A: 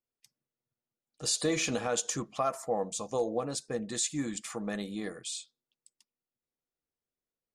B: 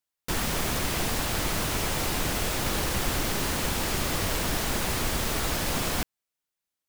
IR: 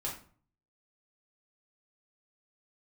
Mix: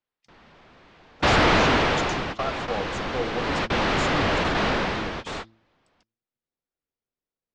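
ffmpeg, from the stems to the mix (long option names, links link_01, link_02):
-filter_complex "[0:a]highshelf=frequency=2900:gain=-5.5,volume=1dB,asplit=2[link_01][link_02];[1:a]lowpass=frequency=4300:width=0.5412,lowpass=frequency=4300:width=1.3066,lowshelf=frequency=230:gain=8.5,asplit=2[link_03][link_04];[link_04]highpass=frequency=720:poles=1,volume=47dB,asoftclip=type=tanh:threshold=-8.5dB[link_05];[link_03][link_05]amix=inputs=2:normalize=0,lowpass=frequency=1500:poles=1,volume=-6dB,volume=6.5dB,afade=type=out:start_time=1.54:duration=0.7:silence=0.251189,afade=type=in:start_time=3.34:duration=0.39:silence=0.446684,afade=type=out:start_time=4.66:duration=0.45:silence=0.334965[link_06];[link_02]apad=whole_len=303656[link_07];[link_06][link_07]sidechaingate=range=-35dB:threshold=-44dB:ratio=16:detection=peak[link_08];[link_01][link_08]amix=inputs=2:normalize=0,lowpass=frequency=6100:width=0.5412,lowpass=frequency=6100:width=1.3066,bandreject=frequency=111.5:width_type=h:width=4,bandreject=frequency=223:width_type=h:width=4,bandreject=frequency=334.5:width_type=h:width=4"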